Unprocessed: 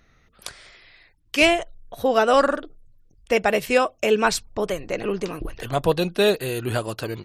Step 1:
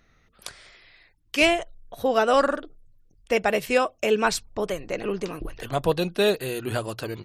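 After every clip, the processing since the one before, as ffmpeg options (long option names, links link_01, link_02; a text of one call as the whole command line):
ffmpeg -i in.wav -af "bandreject=frequency=60:width_type=h:width=6,bandreject=frequency=120:width_type=h:width=6,volume=-2.5dB" out.wav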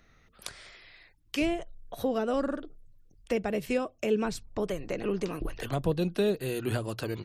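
ffmpeg -i in.wav -filter_complex "[0:a]acrossover=split=380[link_01][link_02];[link_02]acompressor=threshold=-34dB:ratio=6[link_03];[link_01][link_03]amix=inputs=2:normalize=0" out.wav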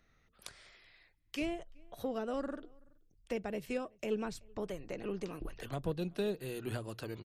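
ffmpeg -i in.wav -filter_complex "[0:a]aeval=exprs='0.178*(cos(1*acos(clip(val(0)/0.178,-1,1)))-cos(1*PI/2))+0.0112*(cos(3*acos(clip(val(0)/0.178,-1,1)))-cos(3*PI/2))+0.00178*(cos(8*acos(clip(val(0)/0.178,-1,1)))-cos(8*PI/2))':channel_layout=same,asplit=2[link_01][link_02];[link_02]adelay=379,volume=-28dB,highshelf=frequency=4000:gain=-8.53[link_03];[link_01][link_03]amix=inputs=2:normalize=0,volume=-7dB" out.wav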